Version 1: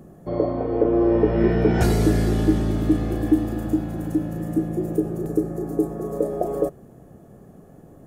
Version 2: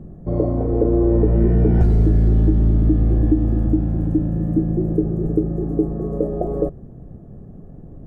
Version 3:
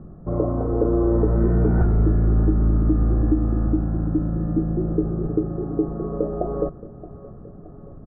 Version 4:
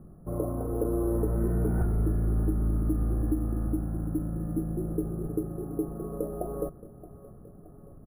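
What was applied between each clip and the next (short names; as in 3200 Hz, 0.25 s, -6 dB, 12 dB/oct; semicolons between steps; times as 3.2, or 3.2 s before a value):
tilt -4.5 dB/oct; compressor 6:1, threshold -7 dBFS, peak gain reduction 7.5 dB; gain -4 dB
synth low-pass 1300 Hz, resonance Q 4.6; feedback echo 0.623 s, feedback 58%, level -17.5 dB; gain -3.5 dB
careless resampling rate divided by 4×, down filtered, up hold; gain -8.5 dB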